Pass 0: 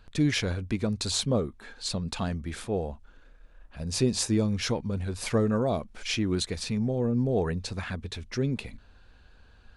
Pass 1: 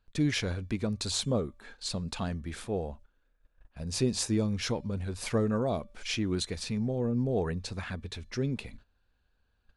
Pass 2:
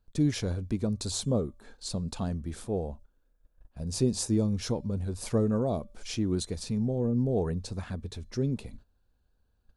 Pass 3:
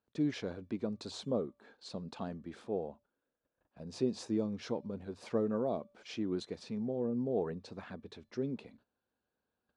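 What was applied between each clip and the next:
resonator 580 Hz, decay 0.52 s, mix 30%; gate -49 dBFS, range -15 dB
bell 2200 Hz -12 dB 2 oct; gain +2.5 dB
BPF 240–3300 Hz; gain -3.5 dB

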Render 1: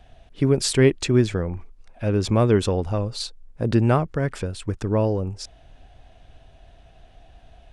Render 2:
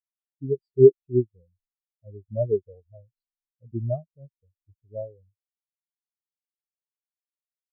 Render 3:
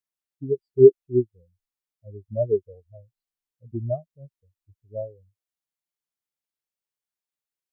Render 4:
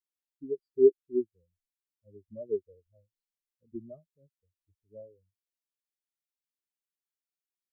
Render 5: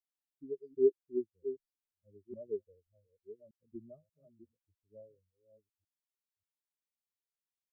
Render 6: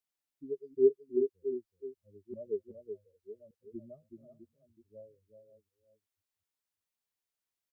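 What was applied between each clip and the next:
bell 660 Hz +6.5 dB 0.6 oct; spectral expander 4:1; gain +1.5 dB
dynamic EQ 150 Hz, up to -5 dB, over -38 dBFS, Q 1.2; gain +2 dB
fixed phaser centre 300 Hz, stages 4; gain -6.5 dB
reverse delay 0.585 s, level -12 dB; gain -6.5 dB
echo 0.375 s -7.5 dB; gain +2.5 dB

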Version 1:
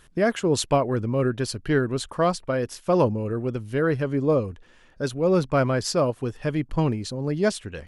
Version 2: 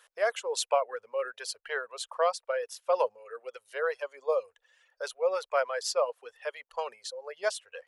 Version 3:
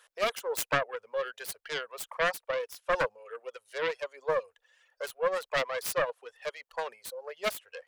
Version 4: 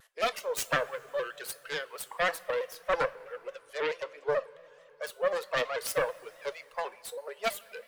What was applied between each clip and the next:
elliptic high-pass 490 Hz, stop band 40 dB; reverb removal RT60 1.4 s; gain -3 dB
self-modulated delay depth 0.46 ms
bin magnitudes rounded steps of 15 dB; two-slope reverb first 0.31 s, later 3.6 s, from -17 dB, DRR 13 dB; shaped vibrato square 4.6 Hz, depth 100 cents

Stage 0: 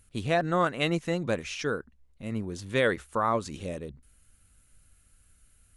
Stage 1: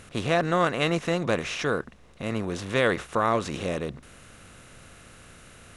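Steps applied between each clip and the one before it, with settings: per-bin compression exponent 0.6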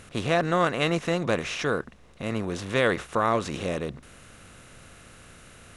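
nothing audible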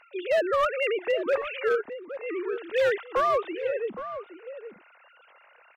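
sine-wave speech; hard clip -18.5 dBFS, distortion -17 dB; outdoor echo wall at 140 m, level -11 dB

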